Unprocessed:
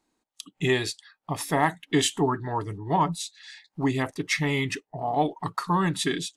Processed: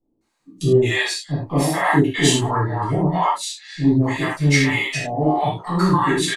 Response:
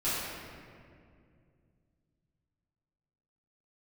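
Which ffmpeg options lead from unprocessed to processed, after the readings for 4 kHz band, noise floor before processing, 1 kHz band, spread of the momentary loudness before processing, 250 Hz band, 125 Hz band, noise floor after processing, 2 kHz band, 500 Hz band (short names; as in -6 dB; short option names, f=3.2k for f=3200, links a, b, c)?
+6.5 dB, -81 dBFS, +5.5 dB, 11 LU, +8.5 dB, +10.5 dB, -70 dBFS, +8.0 dB, +7.5 dB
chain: -filter_complex "[0:a]acrossover=split=610[a][b];[b]adelay=210[c];[a][c]amix=inputs=2:normalize=0[d];[1:a]atrim=start_sample=2205,afade=t=out:st=0.24:d=0.01,atrim=end_sample=11025,asetrate=74970,aresample=44100[e];[d][e]afir=irnorm=-1:irlink=0,volume=4.5dB"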